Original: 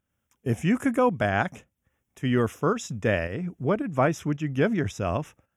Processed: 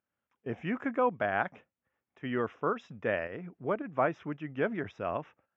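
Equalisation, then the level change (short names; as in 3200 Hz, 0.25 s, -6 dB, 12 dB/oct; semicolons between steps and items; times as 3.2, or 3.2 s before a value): HPF 980 Hz 6 dB/oct; air absorption 170 m; tape spacing loss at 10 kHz 32 dB; +3.0 dB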